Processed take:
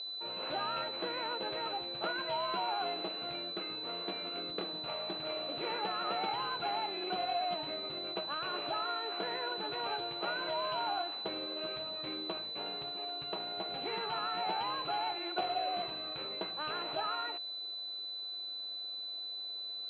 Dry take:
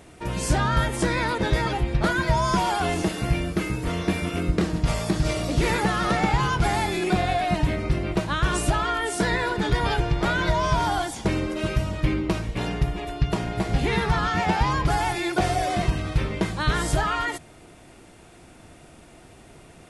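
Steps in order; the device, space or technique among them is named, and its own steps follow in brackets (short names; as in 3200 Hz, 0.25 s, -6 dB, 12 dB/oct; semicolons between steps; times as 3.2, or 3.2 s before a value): toy sound module (decimation joined by straight lines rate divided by 6×; pulse-width modulation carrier 4000 Hz; speaker cabinet 570–5000 Hz, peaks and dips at 1000 Hz -4 dB, 1800 Hz -8 dB, 2700 Hz +9 dB); gain -7 dB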